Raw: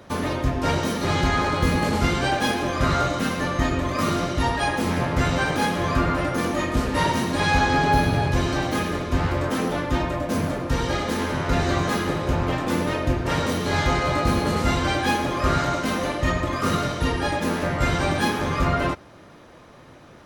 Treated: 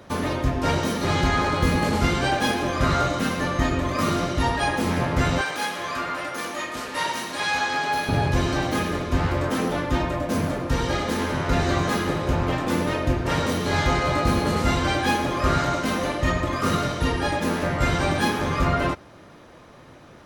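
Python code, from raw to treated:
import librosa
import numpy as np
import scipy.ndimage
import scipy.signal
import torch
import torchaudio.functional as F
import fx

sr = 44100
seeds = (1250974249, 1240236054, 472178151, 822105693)

y = fx.highpass(x, sr, hz=1100.0, slope=6, at=(5.41, 8.09))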